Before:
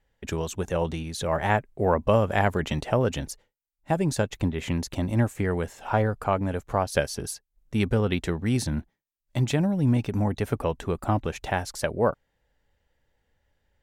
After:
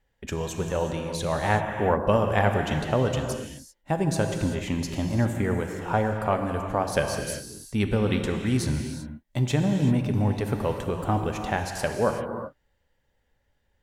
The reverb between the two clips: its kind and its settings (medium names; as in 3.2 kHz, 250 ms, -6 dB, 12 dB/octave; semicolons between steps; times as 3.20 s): gated-style reverb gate 410 ms flat, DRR 4 dB; trim -1 dB